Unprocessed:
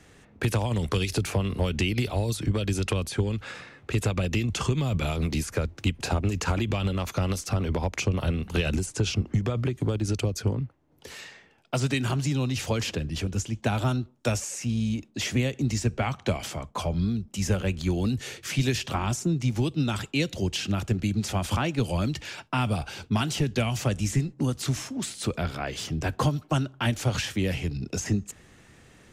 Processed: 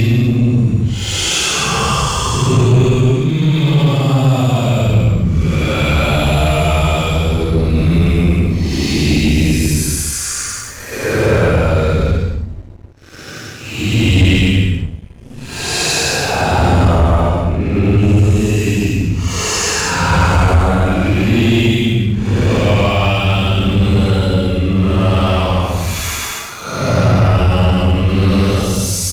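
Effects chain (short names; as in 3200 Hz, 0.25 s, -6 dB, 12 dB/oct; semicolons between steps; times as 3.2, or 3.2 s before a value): Paulstretch 9.8×, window 0.10 s, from 4.42; downsampling 32000 Hz; sample leveller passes 2; gain +7.5 dB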